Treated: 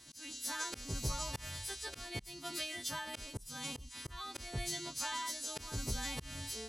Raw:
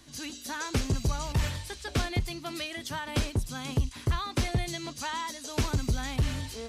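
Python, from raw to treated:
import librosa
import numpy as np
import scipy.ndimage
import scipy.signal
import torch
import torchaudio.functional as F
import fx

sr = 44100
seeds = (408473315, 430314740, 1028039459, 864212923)

y = fx.freq_snap(x, sr, grid_st=2)
y = fx.auto_swell(y, sr, attack_ms=252.0)
y = y * 10.0 ** (-7.0 / 20.0)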